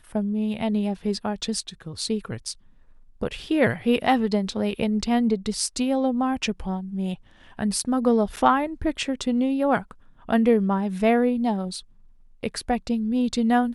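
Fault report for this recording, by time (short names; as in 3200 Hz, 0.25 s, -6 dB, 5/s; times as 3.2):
8.36–8.37 gap 8.5 ms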